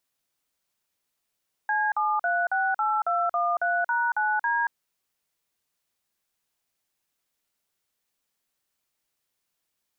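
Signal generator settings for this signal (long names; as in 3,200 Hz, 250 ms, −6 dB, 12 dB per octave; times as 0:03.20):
touch tones "C7368213#9D", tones 230 ms, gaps 45 ms, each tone −24.5 dBFS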